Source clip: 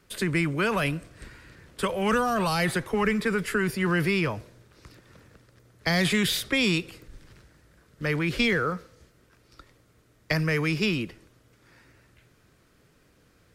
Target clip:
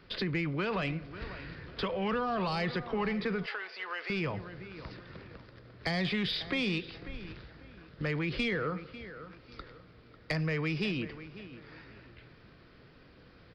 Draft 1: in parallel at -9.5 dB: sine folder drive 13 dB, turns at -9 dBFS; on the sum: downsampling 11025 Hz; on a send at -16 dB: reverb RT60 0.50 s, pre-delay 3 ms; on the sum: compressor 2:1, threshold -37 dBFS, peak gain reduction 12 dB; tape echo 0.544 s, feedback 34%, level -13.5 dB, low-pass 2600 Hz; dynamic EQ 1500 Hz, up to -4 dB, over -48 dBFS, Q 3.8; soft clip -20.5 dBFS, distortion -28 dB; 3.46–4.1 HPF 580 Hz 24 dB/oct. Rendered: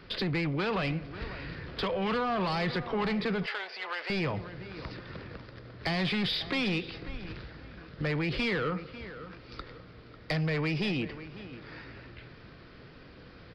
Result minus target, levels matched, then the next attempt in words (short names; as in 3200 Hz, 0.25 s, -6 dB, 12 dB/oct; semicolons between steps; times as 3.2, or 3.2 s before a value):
sine folder: distortion +22 dB
in parallel at -9.5 dB: sine folder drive 2 dB, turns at -9 dBFS; on the sum: downsampling 11025 Hz; on a send at -16 dB: reverb RT60 0.50 s, pre-delay 3 ms; on the sum: compressor 2:1, threshold -37 dBFS, peak gain reduction 12 dB; tape echo 0.544 s, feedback 34%, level -13.5 dB, low-pass 2600 Hz; dynamic EQ 1500 Hz, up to -4 dB, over -48 dBFS, Q 3.8; soft clip -20.5 dBFS, distortion -25 dB; 3.46–4.1 HPF 580 Hz 24 dB/oct